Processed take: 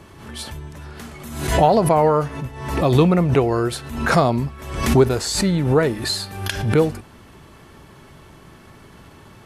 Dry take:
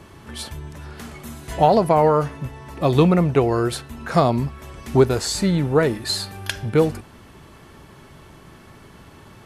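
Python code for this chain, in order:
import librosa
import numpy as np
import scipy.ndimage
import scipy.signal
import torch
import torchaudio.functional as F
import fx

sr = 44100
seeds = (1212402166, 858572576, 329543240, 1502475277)

y = fx.pre_swell(x, sr, db_per_s=66.0)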